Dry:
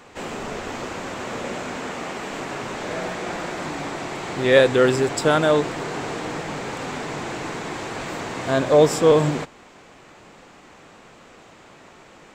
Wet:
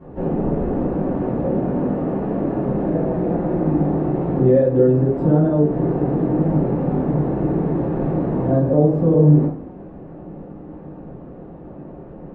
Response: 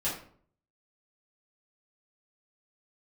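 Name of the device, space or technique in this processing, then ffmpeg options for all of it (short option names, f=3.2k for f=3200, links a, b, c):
television next door: -filter_complex "[0:a]acompressor=threshold=-28dB:ratio=3,lowpass=400[a];[1:a]atrim=start_sample=2205[b];[a][b]afir=irnorm=-1:irlink=0,volume=8.5dB"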